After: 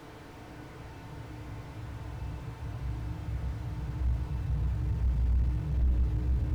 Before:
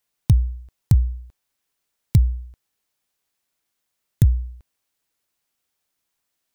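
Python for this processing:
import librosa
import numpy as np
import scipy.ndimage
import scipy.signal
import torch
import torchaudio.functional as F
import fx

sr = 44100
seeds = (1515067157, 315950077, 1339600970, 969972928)

y = x + 0.5 * 10.0 ** (-19.5 / 20.0) * np.sign(x)
y = fx.lowpass(y, sr, hz=1800.0, slope=6)
y = fx.peak_eq(y, sr, hz=360.0, db=-3.5, octaves=2.9)
y = fx.level_steps(y, sr, step_db=23)
y = y + 10.0 ** (-4.5 / 20.0) * np.pad(y, (int(1150 * sr / 1000.0), 0))[:len(y)]
y = fx.paulstretch(y, sr, seeds[0], factor=17.0, window_s=1.0, from_s=2.88)
y = fx.rev_fdn(y, sr, rt60_s=0.43, lf_ratio=1.4, hf_ratio=0.85, size_ms=20.0, drr_db=-6.0)
y = fx.slew_limit(y, sr, full_power_hz=8.0)
y = y * 10.0 ** (-4.0 / 20.0)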